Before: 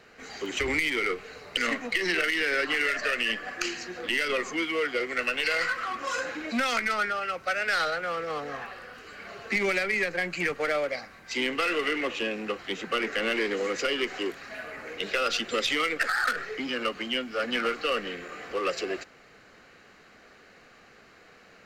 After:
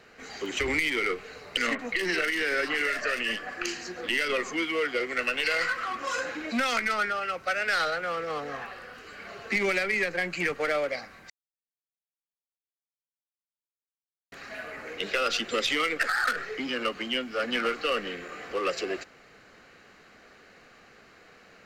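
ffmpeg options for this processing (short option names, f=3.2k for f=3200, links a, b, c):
-filter_complex "[0:a]asettb=1/sr,asplit=3[a][b][c];[a]atrim=end=1.754[d];[b]atrim=start=1.75:end=4.01,asetpts=PTS-STARTPTS,afade=t=in:d=0.004:c=qsin,afade=t=out:st=2.256:d=0.004:c=qsin,acrossover=split=3000[e][f];[f]adelay=40[g];[e][g]amix=inputs=2:normalize=0,atrim=end_sample=99666[h];[c]atrim=start=4.006[i];[d][h]acrossfade=d=0.004:c1=hsin:c2=qsin[j];[j][i]acrossfade=d=0.004:c1=qsin:c2=hsin,asplit=3[k][l][m];[k]atrim=end=11.3,asetpts=PTS-STARTPTS,afade=t=out:st=11.296:d=0.004:c=hsin[n];[l]atrim=start=11.3:end=14.32,asetpts=PTS-STARTPTS,volume=0[o];[m]atrim=start=14.32,asetpts=PTS-STARTPTS,afade=t=in:d=0.004:c=hsin[p];[n][o][p]concat=n=3:v=0:a=1"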